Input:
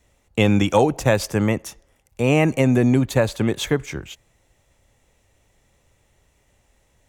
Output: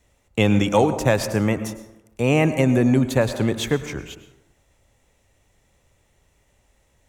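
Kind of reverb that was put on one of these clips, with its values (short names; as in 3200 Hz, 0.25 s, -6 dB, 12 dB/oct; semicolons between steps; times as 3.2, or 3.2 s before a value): plate-style reverb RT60 0.93 s, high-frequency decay 0.45×, pre-delay 90 ms, DRR 11 dB; gain -1 dB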